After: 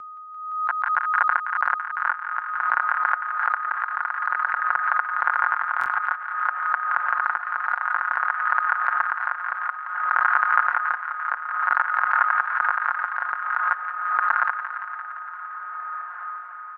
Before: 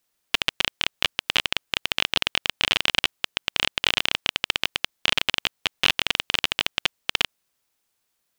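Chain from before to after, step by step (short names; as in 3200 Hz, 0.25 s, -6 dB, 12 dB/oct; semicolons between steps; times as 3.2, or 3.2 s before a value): Butterworth band-pass 2300 Hz, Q 1.5; comb 2.8 ms, depth 66%; whine 2500 Hz -34 dBFS; diffused feedback echo 0.931 s, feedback 62%, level -15 dB; rotary speaker horn 1.1 Hz; thin delay 86 ms, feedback 74%, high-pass 2300 Hz, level -8 dB; speed mistake 15 ips tape played at 7.5 ips; stuck buffer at 5.79, samples 1024, times 2; backwards sustainer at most 46 dB/s; gain +2 dB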